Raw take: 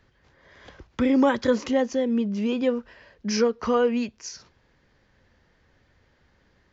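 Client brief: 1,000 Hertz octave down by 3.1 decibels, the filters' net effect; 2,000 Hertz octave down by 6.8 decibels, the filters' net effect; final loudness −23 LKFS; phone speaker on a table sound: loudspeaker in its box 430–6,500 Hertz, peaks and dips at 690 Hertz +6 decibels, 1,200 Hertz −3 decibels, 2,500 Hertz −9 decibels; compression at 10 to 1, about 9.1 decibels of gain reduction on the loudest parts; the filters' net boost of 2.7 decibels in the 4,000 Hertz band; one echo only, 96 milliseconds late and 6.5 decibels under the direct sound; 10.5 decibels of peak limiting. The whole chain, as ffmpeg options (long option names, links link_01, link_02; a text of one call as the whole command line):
ffmpeg -i in.wav -af "equalizer=frequency=1000:width_type=o:gain=-5,equalizer=frequency=2000:width_type=o:gain=-6,equalizer=frequency=4000:width_type=o:gain=7.5,acompressor=threshold=-26dB:ratio=10,alimiter=level_in=3.5dB:limit=-24dB:level=0:latency=1,volume=-3.5dB,highpass=frequency=430:width=0.5412,highpass=frequency=430:width=1.3066,equalizer=frequency=690:width_type=q:width=4:gain=6,equalizer=frequency=1200:width_type=q:width=4:gain=-3,equalizer=frequency=2500:width_type=q:width=4:gain=-9,lowpass=frequency=6500:width=0.5412,lowpass=frequency=6500:width=1.3066,aecho=1:1:96:0.473,volume=16.5dB" out.wav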